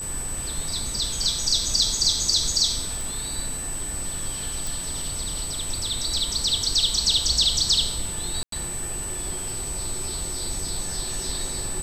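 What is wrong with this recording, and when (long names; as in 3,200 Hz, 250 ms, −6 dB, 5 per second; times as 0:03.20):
whistle 8,000 Hz −30 dBFS
0:03.01: click
0:04.67: click
0:08.43–0:08.52: drop-out 93 ms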